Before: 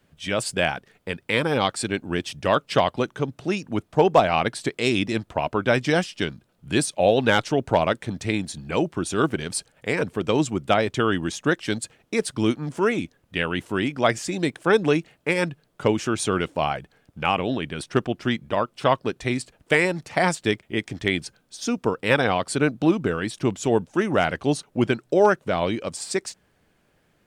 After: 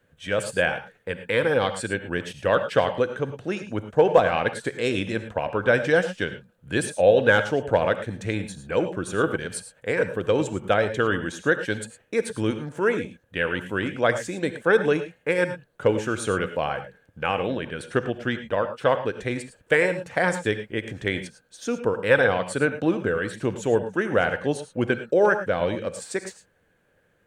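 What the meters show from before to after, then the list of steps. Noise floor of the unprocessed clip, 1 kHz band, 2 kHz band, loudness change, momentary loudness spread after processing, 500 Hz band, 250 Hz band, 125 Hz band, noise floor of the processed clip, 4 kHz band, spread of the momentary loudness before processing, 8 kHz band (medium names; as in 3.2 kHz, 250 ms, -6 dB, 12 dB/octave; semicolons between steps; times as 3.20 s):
-66 dBFS, -3.0 dB, +1.5 dB, -0.5 dB, 11 LU, +1.0 dB, -4.0 dB, -2.5 dB, -65 dBFS, -5.0 dB, 8 LU, -5.0 dB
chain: graphic EQ with 31 bands 100 Hz +6 dB, 500 Hz +11 dB, 1.6 kHz +10 dB, 5 kHz -7 dB; gated-style reverb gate 130 ms rising, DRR 9.5 dB; trim -5 dB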